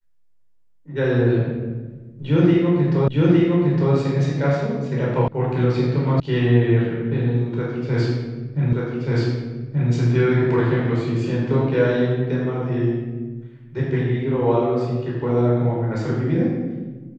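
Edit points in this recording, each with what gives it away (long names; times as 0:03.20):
0:03.08: the same again, the last 0.86 s
0:05.28: cut off before it has died away
0:06.20: cut off before it has died away
0:08.73: the same again, the last 1.18 s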